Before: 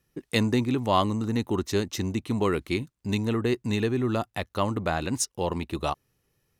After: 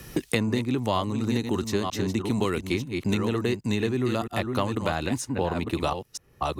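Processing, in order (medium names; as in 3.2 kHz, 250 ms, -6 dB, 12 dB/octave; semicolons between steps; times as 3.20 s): chunks repeated in reverse 475 ms, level -8 dB; three bands compressed up and down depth 100%; trim -1 dB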